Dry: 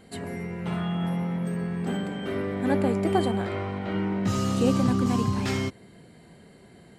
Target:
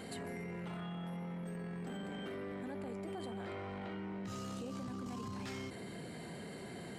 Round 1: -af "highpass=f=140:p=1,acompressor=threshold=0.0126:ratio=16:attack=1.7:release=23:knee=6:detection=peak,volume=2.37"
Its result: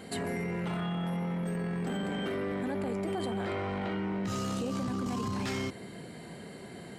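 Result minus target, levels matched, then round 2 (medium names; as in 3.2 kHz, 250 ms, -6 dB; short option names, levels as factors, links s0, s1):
compression: peak gain reduction -10 dB
-af "highpass=f=140:p=1,acompressor=threshold=0.00376:ratio=16:attack=1.7:release=23:knee=6:detection=peak,volume=2.37"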